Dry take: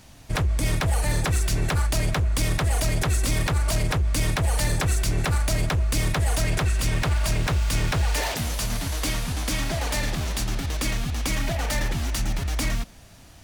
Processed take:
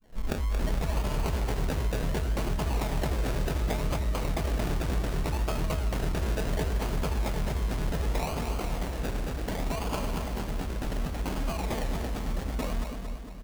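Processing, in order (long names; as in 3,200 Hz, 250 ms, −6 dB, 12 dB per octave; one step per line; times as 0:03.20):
turntable start at the beginning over 0.56 s
comb filter 4.6 ms
sample-and-hold swept by an LFO 33×, swing 60% 0.68 Hz
echo with a time of its own for lows and highs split 410 Hz, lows 324 ms, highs 227 ms, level −5.5 dB
level −7.5 dB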